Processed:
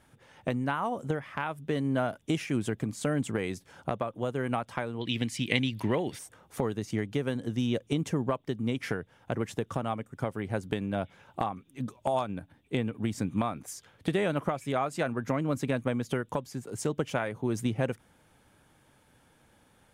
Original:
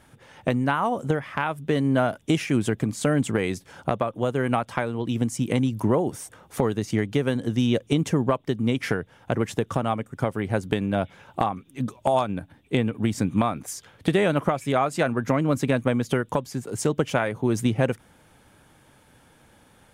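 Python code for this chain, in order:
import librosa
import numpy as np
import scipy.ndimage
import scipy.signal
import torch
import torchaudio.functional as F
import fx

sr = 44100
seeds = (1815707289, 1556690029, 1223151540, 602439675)

y = fx.band_shelf(x, sr, hz=2900.0, db=14.0, octaves=1.7, at=(5.01, 6.19))
y = F.gain(torch.from_numpy(y), -7.0).numpy()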